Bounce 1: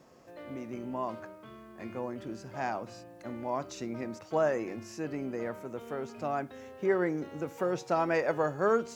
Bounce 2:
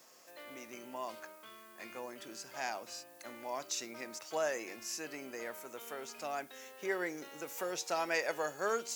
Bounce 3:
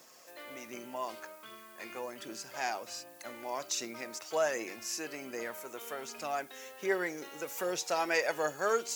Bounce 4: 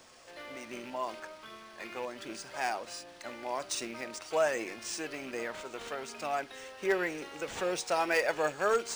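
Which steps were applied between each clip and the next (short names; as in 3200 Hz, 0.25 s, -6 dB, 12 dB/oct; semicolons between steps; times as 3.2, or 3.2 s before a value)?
dynamic EQ 1200 Hz, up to -5 dB, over -44 dBFS, Q 1.6; HPF 190 Hz 6 dB/oct; tilt +4.5 dB/oct; gain -2.5 dB
phaser 1.3 Hz, delay 2.9 ms, feedback 28%; gain +3 dB
rattling part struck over -50 dBFS, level -38 dBFS; in parallel at -11 dB: wrapped overs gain 19 dB; on the sum: decimation joined by straight lines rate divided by 3×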